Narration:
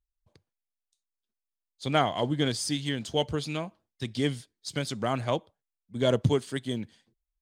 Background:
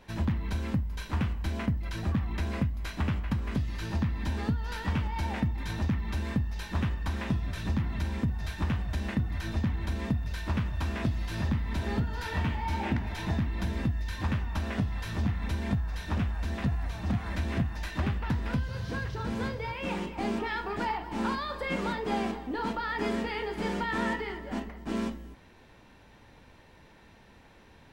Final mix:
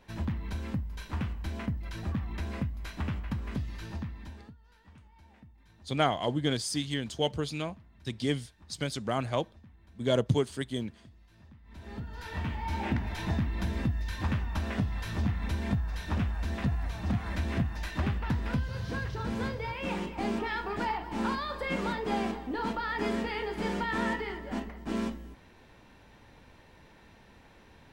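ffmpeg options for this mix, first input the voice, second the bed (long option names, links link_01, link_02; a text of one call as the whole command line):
ffmpeg -i stem1.wav -i stem2.wav -filter_complex "[0:a]adelay=4050,volume=-2dB[link_01];[1:a]volume=21.5dB,afade=type=out:start_time=3.62:duration=0.93:silence=0.0794328,afade=type=in:start_time=11.62:duration=1.35:silence=0.0530884[link_02];[link_01][link_02]amix=inputs=2:normalize=0" out.wav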